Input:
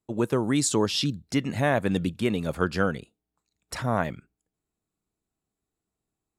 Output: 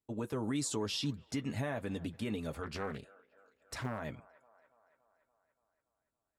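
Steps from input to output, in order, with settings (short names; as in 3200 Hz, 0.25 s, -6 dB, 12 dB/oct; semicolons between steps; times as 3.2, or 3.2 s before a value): limiter -19 dBFS, peak gain reduction 10 dB; notch comb 180 Hz; on a send: band-limited delay 0.285 s, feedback 62%, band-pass 1000 Hz, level -20 dB; 2.63–4 on the sum: Doppler distortion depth 0.83 ms; gain -6.5 dB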